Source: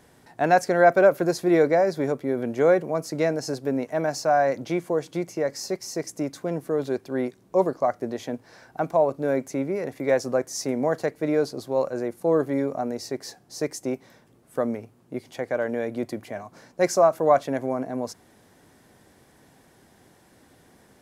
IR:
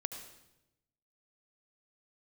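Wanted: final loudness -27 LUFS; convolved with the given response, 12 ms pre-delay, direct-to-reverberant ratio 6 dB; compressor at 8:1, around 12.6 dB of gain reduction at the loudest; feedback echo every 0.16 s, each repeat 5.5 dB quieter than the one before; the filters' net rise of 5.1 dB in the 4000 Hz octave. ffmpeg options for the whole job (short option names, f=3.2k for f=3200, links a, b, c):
-filter_complex "[0:a]equalizer=f=4k:t=o:g=7,acompressor=threshold=-25dB:ratio=8,aecho=1:1:160|320|480|640|800|960|1120:0.531|0.281|0.149|0.079|0.0419|0.0222|0.0118,asplit=2[a][b];[1:a]atrim=start_sample=2205,adelay=12[c];[b][c]afir=irnorm=-1:irlink=0,volume=-6dB[d];[a][d]amix=inputs=2:normalize=0,volume=2dB"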